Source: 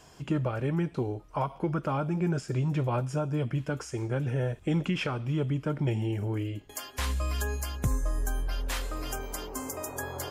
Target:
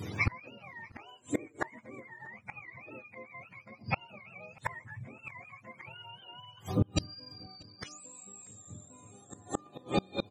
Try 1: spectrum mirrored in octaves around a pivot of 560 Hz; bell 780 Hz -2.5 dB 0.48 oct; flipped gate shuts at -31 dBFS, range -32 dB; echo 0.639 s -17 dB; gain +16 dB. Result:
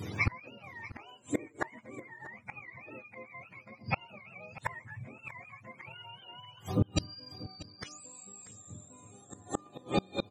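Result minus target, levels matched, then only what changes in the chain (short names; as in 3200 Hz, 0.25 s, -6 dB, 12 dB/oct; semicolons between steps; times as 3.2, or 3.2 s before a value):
echo-to-direct +9 dB
change: echo 0.639 s -26 dB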